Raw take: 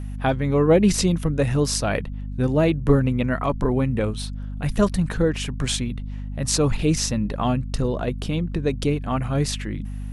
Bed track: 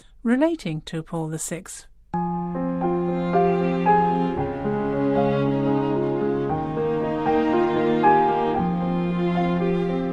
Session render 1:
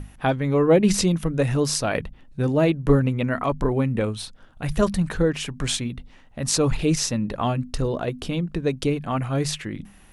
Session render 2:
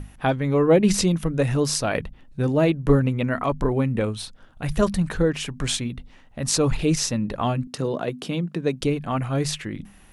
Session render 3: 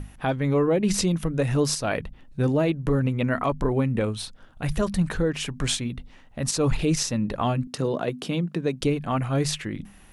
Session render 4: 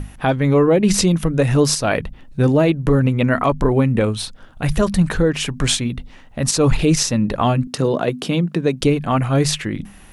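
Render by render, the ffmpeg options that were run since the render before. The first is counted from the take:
-af "bandreject=f=50:t=h:w=6,bandreject=f=100:t=h:w=6,bandreject=f=150:t=h:w=6,bandreject=f=200:t=h:w=6,bandreject=f=250:t=h:w=6"
-filter_complex "[0:a]asettb=1/sr,asplit=3[a][b][c];[a]atrim=end=7.674[d];[b]atrim=start=7.67:end=8.81,asetpts=PTS-STARTPTS,afade=t=in:d=0.004:c=qsin,afade=t=out:st=1.136:d=0.004:c=qsin,highpass=f=130:w=0.5412,highpass=f=130:w=1.3066[e];[c]atrim=start=8.806[f];[d][e]acrossfade=d=0.004:c1=hsin:c2=qsin[g];[g][f]acrossfade=d=0.004:c1=qsin:c2=hsin"
-af "alimiter=limit=-13.5dB:level=0:latency=1:release=182"
-af "volume=7.5dB"

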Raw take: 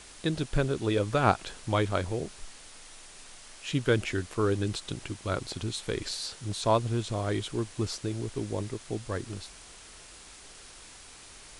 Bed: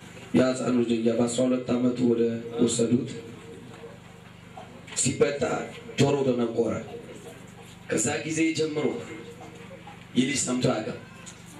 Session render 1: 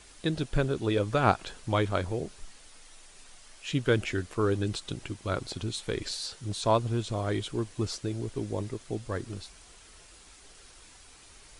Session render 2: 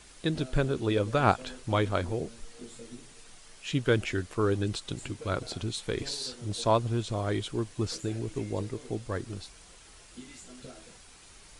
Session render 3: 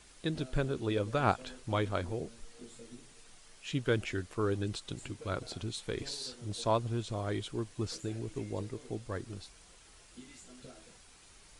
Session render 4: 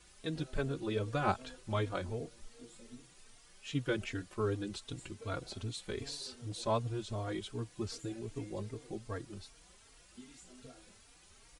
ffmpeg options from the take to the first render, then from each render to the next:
-af "afftdn=nr=6:nf=-50"
-filter_complex "[1:a]volume=-23.5dB[a];[0:a][a]amix=inputs=2:normalize=0"
-af "volume=-5dB"
-filter_complex "[0:a]asplit=2[a][b];[b]adelay=3.7,afreqshift=2.6[c];[a][c]amix=inputs=2:normalize=1"

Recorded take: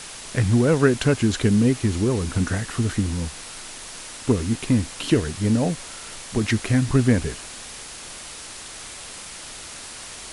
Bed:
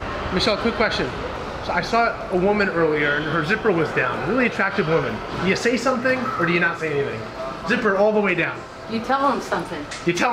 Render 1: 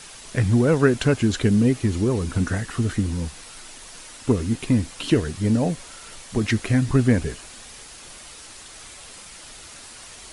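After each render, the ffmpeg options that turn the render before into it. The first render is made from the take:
-af "afftdn=nr=6:nf=-38"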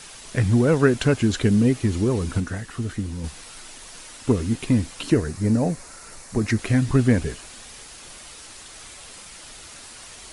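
-filter_complex "[0:a]asettb=1/sr,asplit=3[a][b][c];[a]atrim=end=5.034[d];[b]atrim=start=5.03:end=6.59,asetpts=PTS-STARTPTS,afade=t=in:d=0.004:c=qsin,afade=t=out:st=1.556:d=0.004:c=qsin,equalizer=f=3.2k:t=o:w=0.54:g=-11.5[e];[c]atrim=start=6.586[f];[d][e]acrossfade=d=0.004:c1=hsin:c2=qsin[g];[g][f]acrossfade=d=0.004:c1=qsin:c2=hsin,asplit=3[h][i][j];[h]atrim=end=2.402[k];[i]atrim=start=2.398:end=3.242,asetpts=PTS-STARTPTS,volume=-5dB[l];[j]atrim=start=3.238[m];[k][l]acrossfade=d=0.004:c1=hsin:c2=hsin[n];[n][m]acrossfade=d=0.004:c1=hsin:c2=hsin"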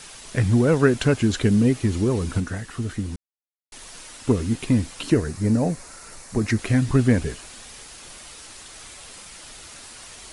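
-filter_complex "[0:a]asplit=3[a][b][c];[a]atrim=end=3.16,asetpts=PTS-STARTPTS,afade=t=out:st=3.156:d=0.004:c=hsin[d];[b]atrim=start=3.16:end=3.72,asetpts=PTS-STARTPTS,volume=0[e];[c]atrim=start=3.72,asetpts=PTS-STARTPTS,afade=t=in:d=0.004:c=hsin[f];[d][e][f]concat=n=3:v=0:a=1"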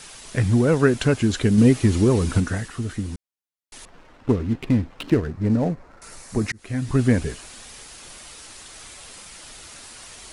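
-filter_complex "[0:a]asettb=1/sr,asplit=3[a][b][c];[a]atrim=end=3.854[d];[b]atrim=start=3.85:end=6.02,asetpts=PTS-STARTPTS,afade=t=in:d=0.004:c=qsin,afade=t=out:st=2.166:d=0.004:c=qsin,adynamicsmooth=sensitivity=4.5:basefreq=1k[e];[c]atrim=start=6.016[f];[d][e]acrossfade=d=0.004:c1=hsin:c2=qsin[g];[g][f]acrossfade=d=0.004:c1=qsin:c2=hsin,asplit=4[h][i][j][k];[h]atrim=end=1.582[l];[i]atrim=start=1.578:end=2.682,asetpts=PTS-STARTPTS,volume=4dB[m];[j]atrim=start=2.678:end=6.52,asetpts=PTS-STARTPTS,afade=t=out:st=3.838:d=0.004:c=hsin[n];[k]atrim=start=6.52,asetpts=PTS-STARTPTS,afade=t=in:d=0.53[o];[l][m]acrossfade=d=0.004:c1=hsin:c2=hsin[p];[n][o]concat=n=2:v=0:a=1[q];[p][q]acrossfade=d=0.004:c1=hsin:c2=hsin"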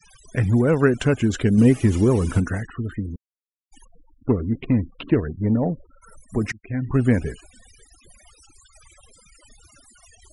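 -af "afftfilt=real='re*gte(hypot(re,im),0.0158)':imag='im*gte(hypot(re,im),0.0158)':win_size=1024:overlap=0.75,equalizer=f=4.2k:w=3.7:g=-10"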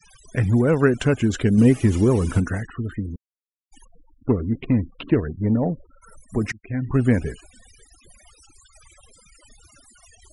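-af anull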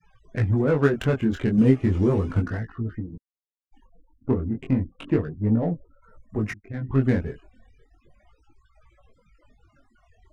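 -af "adynamicsmooth=sensitivity=2.5:basefreq=1.6k,flanger=delay=17.5:depth=5.7:speed=0.34"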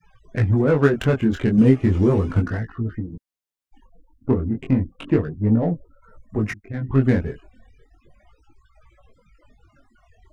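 -af "volume=3.5dB,alimiter=limit=-3dB:level=0:latency=1"

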